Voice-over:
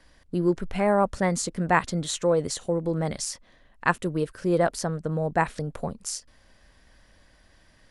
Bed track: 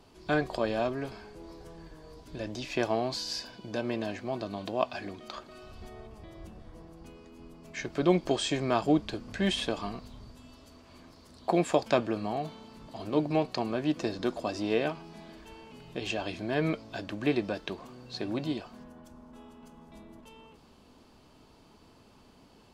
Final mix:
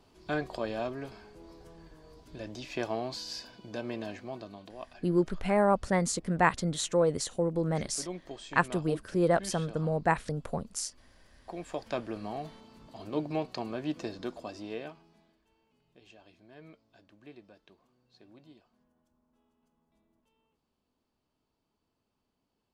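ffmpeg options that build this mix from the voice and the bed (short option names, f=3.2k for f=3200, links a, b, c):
-filter_complex "[0:a]adelay=4700,volume=-3dB[a];[1:a]volume=6dB,afade=t=out:st=4.13:d=0.65:silence=0.281838,afade=t=in:st=11.57:d=0.7:silence=0.298538,afade=t=out:st=13.94:d=1.44:silence=0.11885[b];[a][b]amix=inputs=2:normalize=0"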